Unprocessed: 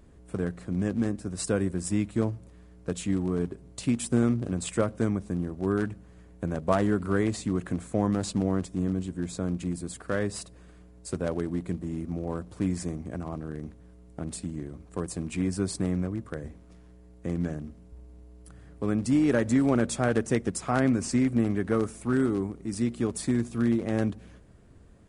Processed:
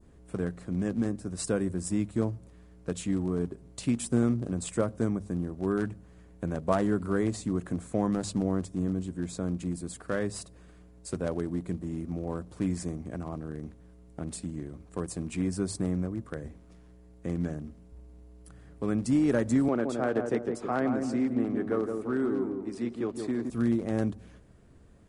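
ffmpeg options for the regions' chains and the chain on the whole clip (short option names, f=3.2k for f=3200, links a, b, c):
-filter_complex "[0:a]asettb=1/sr,asplit=3[a][b][c];[a]atrim=end=19.684[d];[b]atrim=start=19.68:end=23.5,asetpts=PTS-STARTPTS,afade=t=in:d=0.004:c=qsin,afade=t=out:st=3.816:d=0.004:c=qsin,acrossover=split=240 4200:gain=0.251 1 0.2[e][f][g];[e][f][g]amix=inputs=3:normalize=0,asplit=2[h][i];[i]adelay=167,lowpass=f=930:p=1,volume=-4dB,asplit=2[j][k];[k]adelay=167,lowpass=f=930:p=1,volume=0.46,asplit=2[l][m];[m]adelay=167,lowpass=f=930:p=1,volume=0.46,asplit=2[n][o];[o]adelay=167,lowpass=f=930:p=1,volume=0.46,asplit=2[p][q];[q]adelay=167,lowpass=f=930:p=1,volume=0.46,asplit=2[r][s];[s]adelay=167,lowpass=f=930:p=1,volume=0.46[t];[h][j][l][n][p][r][t]amix=inputs=7:normalize=0,atrim=end_sample=168462[u];[c]atrim=start=23.496[v];[d][u]acrossfade=d=0.004:c1=hsin:c2=qsin[w];[w][v]acrossfade=d=0.004:c1=qsin:c2=hsin,bandreject=f=50:t=h:w=6,bandreject=f=100:t=h:w=6,adynamicequalizer=threshold=0.00316:dfrequency=2500:dqfactor=0.86:tfrequency=2500:tqfactor=0.86:attack=5:release=100:ratio=0.375:range=3:mode=cutabove:tftype=bell,volume=-1.5dB"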